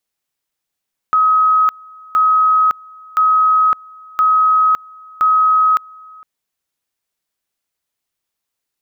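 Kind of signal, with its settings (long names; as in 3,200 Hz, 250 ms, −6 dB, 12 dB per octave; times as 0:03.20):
tone at two levels in turn 1,270 Hz −9 dBFS, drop 26.5 dB, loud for 0.56 s, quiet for 0.46 s, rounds 5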